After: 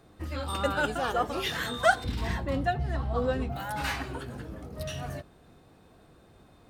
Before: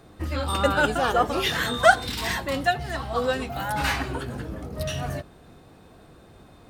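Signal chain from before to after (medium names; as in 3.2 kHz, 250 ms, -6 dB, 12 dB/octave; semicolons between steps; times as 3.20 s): 2.04–3.56 s: tilt EQ -3 dB/octave; trim -6.5 dB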